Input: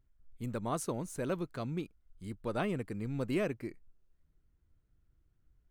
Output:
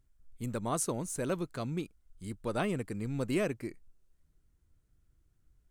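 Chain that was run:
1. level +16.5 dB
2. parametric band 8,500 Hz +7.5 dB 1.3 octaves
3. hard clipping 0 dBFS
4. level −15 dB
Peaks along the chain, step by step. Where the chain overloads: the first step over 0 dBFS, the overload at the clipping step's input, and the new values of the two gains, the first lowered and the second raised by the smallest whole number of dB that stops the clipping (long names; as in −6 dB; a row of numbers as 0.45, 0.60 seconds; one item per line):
−4.5, −4.0, −4.0, −19.0 dBFS
no step passes full scale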